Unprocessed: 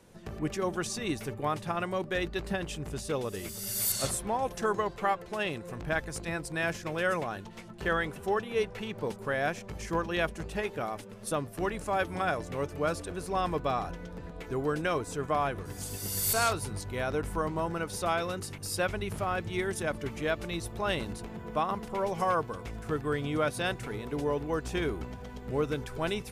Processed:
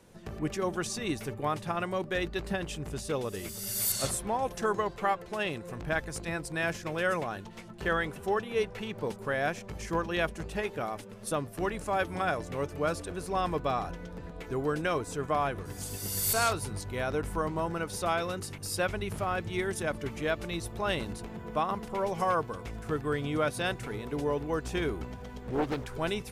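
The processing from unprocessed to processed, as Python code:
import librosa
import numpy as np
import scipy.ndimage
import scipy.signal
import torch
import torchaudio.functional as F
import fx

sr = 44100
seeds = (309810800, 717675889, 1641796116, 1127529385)

y = fx.doppler_dist(x, sr, depth_ms=0.69, at=(25.43, 25.94))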